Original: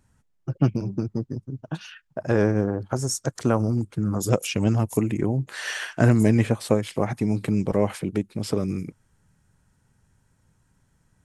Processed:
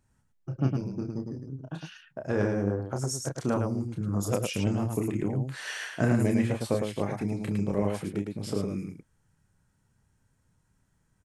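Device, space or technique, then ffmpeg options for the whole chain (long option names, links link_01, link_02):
slapback doubling: -filter_complex "[0:a]asplit=3[link_01][link_02][link_03];[link_02]adelay=30,volume=-5.5dB[link_04];[link_03]adelay=108,volume=-4.5dB[link_05];[link_01][link_04][link_05]amix=inputs=3:normalize=0,volume=-7.5dB"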